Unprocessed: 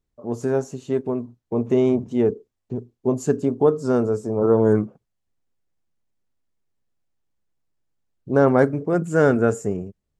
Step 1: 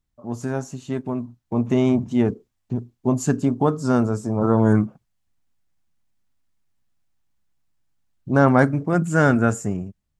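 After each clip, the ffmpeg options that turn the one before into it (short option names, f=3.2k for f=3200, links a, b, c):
-af "equalizer=f=440:w=1.9:g=-12,dynaudnorm=f=530:g=5:m=4dB,volume=1.5dB"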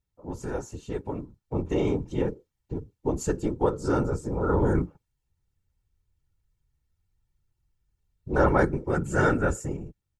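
-af "afftfilt=real='hypot(re,im)*cos(2*PI*random(0))':imag='hypot(re,im)*sin(2*PI*random(1))':win_size=512:overlap=0.75,aecho=1:1:2.2:0.47"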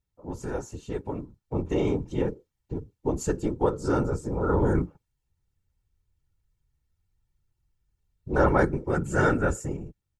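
-af anull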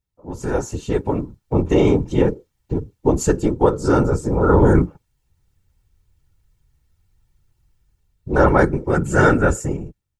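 -af "dynaudnorm=f=120:g=7:m=12dB"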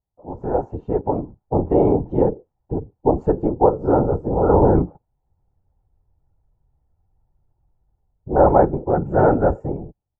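-af "lowpass=f=750:t=q:w=3.7,volume=-3.5dB"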